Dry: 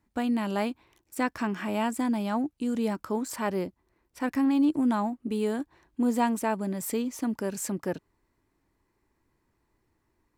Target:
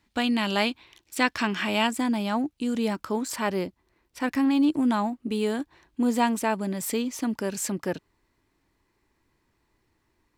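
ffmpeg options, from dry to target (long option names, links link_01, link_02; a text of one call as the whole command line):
ffmpeg -i in.wav -af "asetnsamples=nb_out_samples=441:pad=0,asendcmd='1.87 equalizer g 6.5',equalizer=frequency=3500:width=0.69:gain=14,volume=1.5dB" out.wav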